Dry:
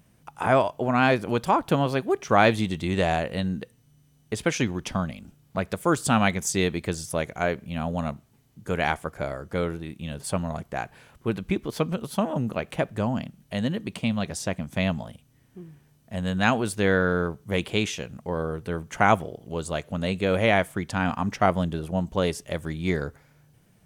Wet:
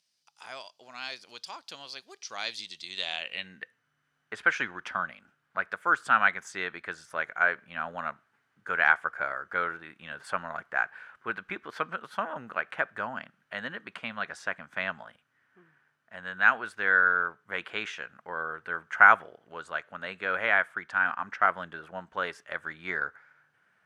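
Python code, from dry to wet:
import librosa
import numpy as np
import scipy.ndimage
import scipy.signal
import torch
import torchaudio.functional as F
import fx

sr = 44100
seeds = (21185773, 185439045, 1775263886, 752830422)

y = fx.rider(x, sr, range_db=4, speed_s=2.0)
y = fx.filter_sweep_bandpass(y, sr, from_hz=4800.0, to_hz=1500.0, start_s=2.82, end_s=3.79, q=4.2)
y = F.gain(torch.from_numpy(y), 8.0).numpy()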